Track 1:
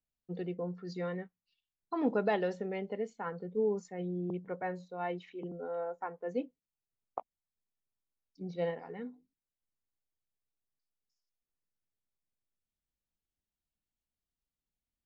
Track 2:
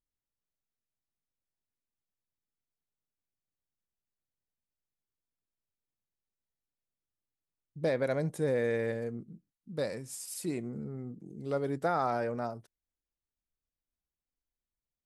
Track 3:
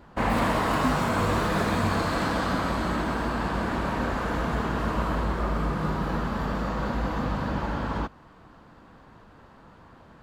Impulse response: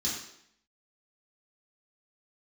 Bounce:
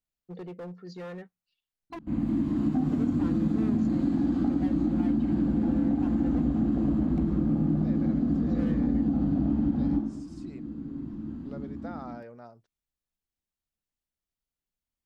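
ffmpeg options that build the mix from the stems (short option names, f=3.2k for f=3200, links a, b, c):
-filter_complex "[0:a]asoftclip=type=hard:threshold=-35.5dB,volume=-0.5dB,asplit=3[a][b][c];[a]atrim=end=1.99,asetpts=PTS-STARTPTS,afade=t=out:st=1.986:d=0.004:c=hsin[d];[b]atrim=start=1.99:end=2.83,asetpts=PTS-STARTPTS,volume=0[e];[c]atrim=start=2.83,asetpts=PTS-STARTPTS,afade=t=in:d=0.004:c=hsin[f];[d][e][f]concat=n=3:v=0:a=1[g];[1:a]lowpass=f=6.2k:w=0.5412,lowpass=f=6.2k:w=1.3066,acontrast=75,volume=-19dB,asplit=2[h][i];[2:a]firequalizer=gain_entry='entry(120,0);entry(280,14);entry(420,-11);entry(1400,-17)':delay=0.05:min_phase=1,dynaudnorm=f=320:g=5:m=16dB,aeval=exprs='0.944*sin(PI/2*2*val(0)/0.944)':c=same,adelay=1900,volume=-19dB,asplit=2[j][k];[k]volume=-6.5dB[l];[i]apad=whole_len=539161[m];[j][m]sidechaincompress=threshold=-44dB:ratio=8:attack=16:release=936[n];[3:a]atrim=start_sample=2205[o];[l][o]afir=irnorm=-1:irlink=0[p];[g][h][n][p]amix=inputs=4:normalize=0,acompressor=threshold=-22dB:ratio=6"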